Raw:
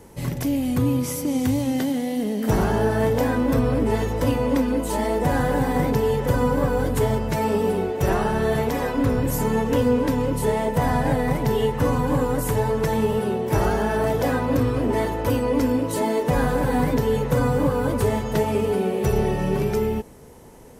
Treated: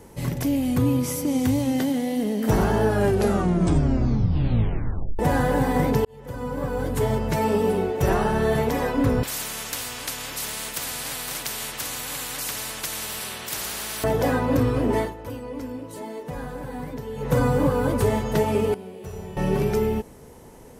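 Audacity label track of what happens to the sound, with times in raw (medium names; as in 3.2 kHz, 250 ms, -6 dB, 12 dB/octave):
2.840000	2.840000	tape stop 2.35 s
6.050000	7.300000	fade in
9.230000	14.040000	spectrum-flattening compressor 10:1
14.970000	17.330000	dip -12.5 dB, fades 0.17 s
18.740000	19.370000	feedback comb 90 Hz, decay 1.1 s, mix 90%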